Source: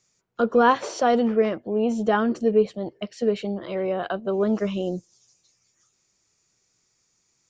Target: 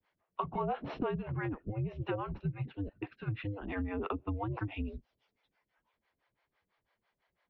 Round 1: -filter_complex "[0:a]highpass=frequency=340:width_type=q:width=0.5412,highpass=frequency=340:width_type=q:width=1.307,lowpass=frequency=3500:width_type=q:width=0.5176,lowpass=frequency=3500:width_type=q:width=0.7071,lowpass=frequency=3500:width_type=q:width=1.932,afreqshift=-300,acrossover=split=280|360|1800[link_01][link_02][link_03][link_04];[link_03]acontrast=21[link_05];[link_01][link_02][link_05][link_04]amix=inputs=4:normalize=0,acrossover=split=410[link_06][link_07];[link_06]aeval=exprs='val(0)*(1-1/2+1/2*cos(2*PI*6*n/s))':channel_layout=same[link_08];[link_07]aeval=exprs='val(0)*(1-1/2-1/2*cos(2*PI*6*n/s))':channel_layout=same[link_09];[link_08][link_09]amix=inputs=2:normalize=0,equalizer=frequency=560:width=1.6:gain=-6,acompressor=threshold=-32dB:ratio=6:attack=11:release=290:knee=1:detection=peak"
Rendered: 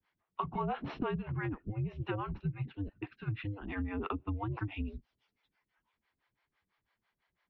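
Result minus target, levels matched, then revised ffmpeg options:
500 Hz band −2.5 dB
-filter_complex "[0:a]highpass=frequency=340:width_type=q:width=0.5412,highpass=frequency=340:width_type=q:width=1.307,lowpass=frequency=3500:width_type=q:width=0.5176,lowpass=frequency=3500:width_type=q:width=0.7071,lowpass=frequency=3500:width_type=q:width=1.932,afreqshift=-300,acrossover=split=280|360|1800[link_01][link_02][link_03][link_04];[link_03]acontrast=21[link_05];[link_01][link_02][link_05][link_04]amix=inputs=4:normalize=0,acrossover=split=410[link_06][link_07];[link_06]aeval=exprs='val(0)*(1-1/2+1/2*cos(2*PI*6*n/s))':channel_layout=same[link_08];[link_07]aeval=exprs='val(0)*(1-1/2-1/2*cos(2*PI*6*n/s))':channel_layout=same[link_09];[link_08][link_09]amix=inputs=2:normalize=0,equalizer=frequency=560:width=1.6:gain=2.5,acompressor=threshold=-32dB:ratio=6:attack=11:release=290:knee=1:detection=peak"

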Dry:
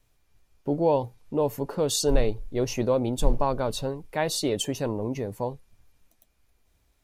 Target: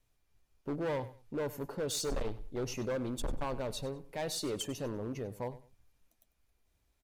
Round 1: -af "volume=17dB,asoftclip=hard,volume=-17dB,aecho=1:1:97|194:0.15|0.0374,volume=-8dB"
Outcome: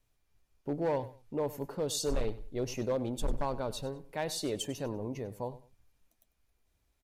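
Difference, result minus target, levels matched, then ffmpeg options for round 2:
gain into a clipping stage and back: distortion −6 dB
-af "volume=23dB,asoftclip=hard,volume=-23dB,aecho=1:1:97|194:0.15|0.0374,volume=-8dB"

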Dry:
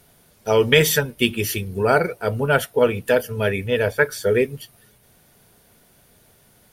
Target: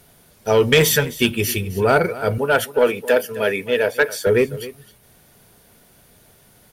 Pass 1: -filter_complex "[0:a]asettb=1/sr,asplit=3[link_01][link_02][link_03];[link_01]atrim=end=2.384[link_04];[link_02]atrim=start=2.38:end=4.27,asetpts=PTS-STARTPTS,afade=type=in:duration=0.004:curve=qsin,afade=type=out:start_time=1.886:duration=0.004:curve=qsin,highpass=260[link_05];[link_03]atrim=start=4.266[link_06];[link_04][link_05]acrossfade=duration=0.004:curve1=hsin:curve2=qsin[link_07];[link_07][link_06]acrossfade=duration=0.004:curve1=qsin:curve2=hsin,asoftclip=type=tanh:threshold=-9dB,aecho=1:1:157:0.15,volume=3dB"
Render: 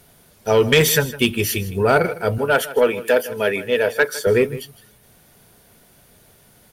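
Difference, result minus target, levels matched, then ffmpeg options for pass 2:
echo 106 ms early
-filter_complex "[0:a]asettb=1/sr,asplit=3[link_01][link_02][link_03];[link_01]atrim=end=2.384[link_04];[link_02]atrim=start=2.38:end=4.27,asetpts=PTS-STARTPTS,afade=type=in:duration=0.004:curve=qsin,afade=type=out:start_time=1.886:duration=0.004:curve=qsin,highpass=260[link_05];[link_03]atrim=start=4.266[link_06];[link_04][link_05]acrossfade=duration=0.004:curve1=hsin:curve2=qsin[link_07];[link_07][link_06]acrossfade=duration=0.004:curve1=qsin:curve2=hsin,asoftclip=type=tanh:threshold=-9dB,aecho=1:1:263:0.15,volume=3dB"

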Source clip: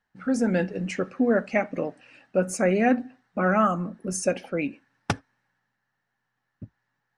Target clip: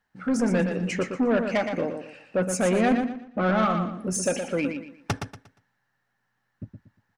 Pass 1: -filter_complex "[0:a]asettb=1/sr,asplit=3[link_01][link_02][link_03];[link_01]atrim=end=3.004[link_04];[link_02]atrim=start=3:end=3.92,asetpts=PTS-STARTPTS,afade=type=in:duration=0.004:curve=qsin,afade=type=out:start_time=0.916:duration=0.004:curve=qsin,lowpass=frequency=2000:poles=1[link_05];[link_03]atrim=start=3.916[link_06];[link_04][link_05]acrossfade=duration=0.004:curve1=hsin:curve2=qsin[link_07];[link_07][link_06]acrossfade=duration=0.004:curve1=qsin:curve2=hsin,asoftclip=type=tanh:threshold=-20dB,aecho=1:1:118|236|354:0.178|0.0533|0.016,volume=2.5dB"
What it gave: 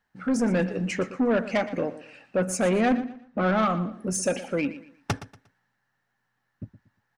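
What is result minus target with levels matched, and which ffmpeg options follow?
echo-to-direct −8 dB
-filter_complex "[0:a]asettb=1/sr,asplit=3[link_01][link_02][link_03];[link_01]atrim=end=3.004[link_04];[link_02]atrim=start=3:end=3.92,asetpts=PTS-STARTPTS,afade=type=in:duration=0.004:curve=qsin,afade=type=out:start_time=0.916:duration=0.004:curve=qsin,lowpass=frequency=2000:poles=1[link_05];[link_03]atrim=start=3.916[link_06];[link_04][link_05]acrossfade=duration=0.004:curve1=hsin:curve2=qsin[link_07];[link_07][link_06]acrossfade=duration=0.004:curve1=qsin:curve2=hsin,asoftclip=type=tanh:threshold=-20dB,aecho=1:1:118|236|354|472:0.447|0.134|0.0402|0.0121,volume=2.5dB"

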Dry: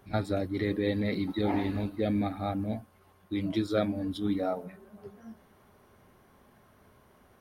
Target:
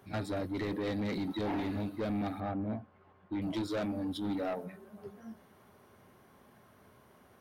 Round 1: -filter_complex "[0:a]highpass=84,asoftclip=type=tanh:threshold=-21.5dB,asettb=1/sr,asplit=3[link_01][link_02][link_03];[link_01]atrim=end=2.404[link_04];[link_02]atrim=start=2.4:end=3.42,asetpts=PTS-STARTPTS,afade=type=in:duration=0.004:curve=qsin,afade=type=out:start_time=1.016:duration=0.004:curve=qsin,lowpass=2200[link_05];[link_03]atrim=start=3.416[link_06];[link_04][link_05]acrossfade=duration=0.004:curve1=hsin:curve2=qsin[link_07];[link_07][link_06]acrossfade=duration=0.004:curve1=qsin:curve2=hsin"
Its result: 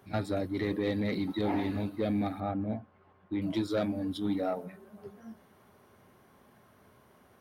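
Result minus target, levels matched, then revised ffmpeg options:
soft clipping: distortion −9 dB
-filter_complex "[0:a]highpass=84,asoftclip=type=tanh:threshold=-30dB,asettb=1/sr,asplit=3[link_01][link_02][link_03];[link_01]atrim=end=2.404[link_04];[link_02]atrim=start=2.4:end=3.42,asetpts=PTS-STARTPTS,afade=type=in:duration=0.004:curve=qsin,afade=type=out:start_time=1.016:duration=0.004:curve=qsin,lowpass=2200[link_05];[link_03]atrim=start=3.416[link_06];[link_04][link_05]acrossfade=duration=0.004:curve1=hsin:curve2=qsin[link_07];[link_07][link_06]acrossfade=duration=0.004:curve1=qsin:curve2=hsin"

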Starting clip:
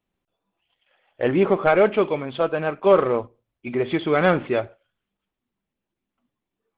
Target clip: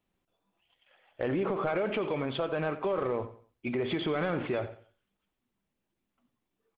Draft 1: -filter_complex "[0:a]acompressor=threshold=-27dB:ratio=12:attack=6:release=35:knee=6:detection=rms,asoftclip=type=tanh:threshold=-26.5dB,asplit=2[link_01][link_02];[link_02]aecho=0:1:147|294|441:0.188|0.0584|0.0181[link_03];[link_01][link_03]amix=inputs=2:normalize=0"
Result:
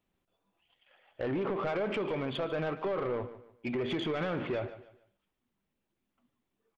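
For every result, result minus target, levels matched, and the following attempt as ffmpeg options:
echo 58 ms late; soft clipping: distortion +18 dB
-filter_complex "[0:a]acompressor=threshold=-27dB:ratio=12:attack=6:release=35:knee=6:detection=rms,asoftclip=type=tanh:threshold=-26.5dB,asplit=2[link_01][link_02];[link_02]aecho=0:1:89|178|267:0.188|0.0584|0.0181[link_03];[link_01][link_03]amix=inputs=2:normalize=0"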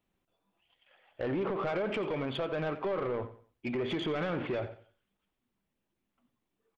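soft clipping: distortion +18 dB
-filter_complex "[0:a]acompressor=threshold=-27dB:ratio=12:attack=6:release=35:knee=6:detection=rms,asoftclip=type=tanh:threshold=-15dB,asplit=2[link_01][link_02];[link_02]aecho=0:1:89|178|267:0.188|0.0584|0.0181[link_03];[link_01][link_03]amix=inputs=2:normalize=0"

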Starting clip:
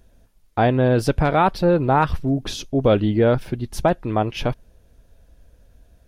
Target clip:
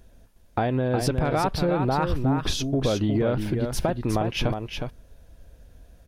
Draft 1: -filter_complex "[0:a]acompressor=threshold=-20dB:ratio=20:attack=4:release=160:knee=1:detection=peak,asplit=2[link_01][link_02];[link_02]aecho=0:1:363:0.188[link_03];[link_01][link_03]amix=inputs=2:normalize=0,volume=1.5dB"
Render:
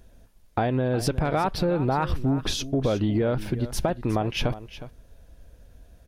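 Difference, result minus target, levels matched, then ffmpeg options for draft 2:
echo-to-direct −8.5 dB
-filter_complex "[0:a]acompressor=threshold=-20dB:ratio=20:attack=4:release=160:knee=1:detection=peak,asplit=2[link_01][link_02];[link_02]aecho=0:1:363:0.501[link_03];[link_01][link_03]amix=inputs=2:normalize=0,volume=1.5dB"

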